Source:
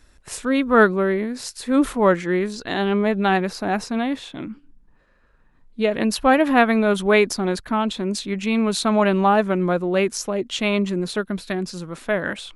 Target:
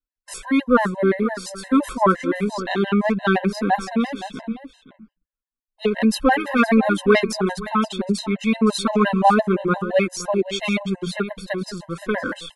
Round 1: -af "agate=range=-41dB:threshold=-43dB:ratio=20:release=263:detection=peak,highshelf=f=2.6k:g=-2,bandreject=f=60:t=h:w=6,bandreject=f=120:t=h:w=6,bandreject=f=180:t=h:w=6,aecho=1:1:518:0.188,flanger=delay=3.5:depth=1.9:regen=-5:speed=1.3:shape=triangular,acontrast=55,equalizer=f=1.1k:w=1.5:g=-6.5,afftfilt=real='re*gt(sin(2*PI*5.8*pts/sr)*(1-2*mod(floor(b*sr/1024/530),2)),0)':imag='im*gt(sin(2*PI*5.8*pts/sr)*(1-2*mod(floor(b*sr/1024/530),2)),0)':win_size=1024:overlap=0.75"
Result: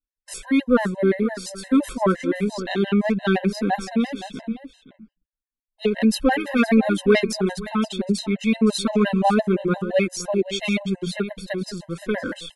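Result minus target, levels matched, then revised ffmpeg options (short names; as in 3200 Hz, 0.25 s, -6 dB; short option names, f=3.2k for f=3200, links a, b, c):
1000 Hz band -4.5 dB
-af "agate=range=-41dB:threshold=-43dB:ratio=20:release=263:detection=peak,highshelf=f=2.6k:g=-2,bandreject=f=60:t=h:w=6,bandreject=f=120:t=h:w=6,bandreject=f=180:t=h:w=6,aecho=1:1:518:0.188,flanger=delay=3.5:depth=1.9:regen=-5:speed=1.3:shape=triangular,acontrast=55,equalizer=f=1.1k:w=1.5:g=3,afftfilt=real='re*gt(sin(2*PI*5.8*pts/sr)*(1-2*mod(floor(b*sr/1024/530),2)),0)':imag='im*gt(sin(2*PI*5.8*pts/sr)*(1-2*mod(floor(b*sr/1024/530),2)),0)':win_size=1024:overlap=0.75"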